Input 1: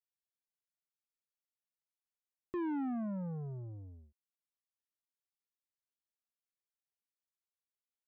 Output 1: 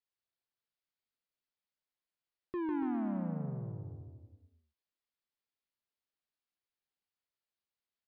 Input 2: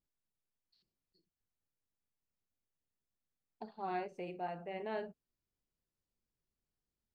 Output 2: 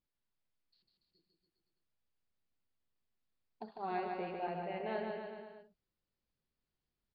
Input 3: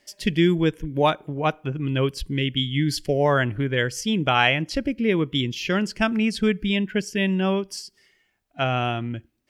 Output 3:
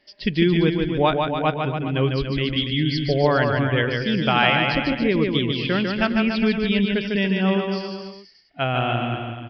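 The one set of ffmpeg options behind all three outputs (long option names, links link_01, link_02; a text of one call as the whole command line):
ffmpeg -i in.wav -filter_complex "[0:a]asplit=2[link_01][link_02];[link_02]aecho=0:1:150|285|406.5|515.8|614.3:0.631|0.398|0.251|0.158|0.1[link_03];[link_01][link_03]amix=inputs=2:normalize=0,aresample=11025,aresample=44100" out.wav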